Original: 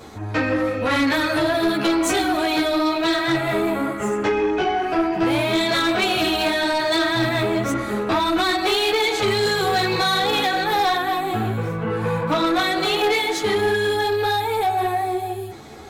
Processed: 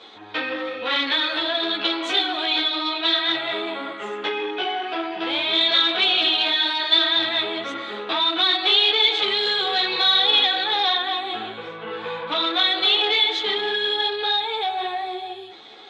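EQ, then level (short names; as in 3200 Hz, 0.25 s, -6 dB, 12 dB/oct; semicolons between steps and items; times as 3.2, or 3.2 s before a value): HPF 400 Hz 12 dB/oct; synth low-pass 3500 Hz, resonance Q 6; notch 620 Hz, Q 20; -5.0 dB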